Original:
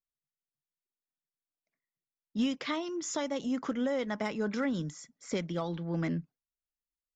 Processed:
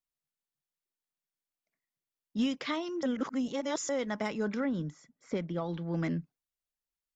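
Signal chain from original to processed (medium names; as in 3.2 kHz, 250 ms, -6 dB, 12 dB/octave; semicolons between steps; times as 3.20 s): 3.03–3.89 s: reverse; 4.54–5.69 s: low-pass 1.6 kHz 6 dB/octave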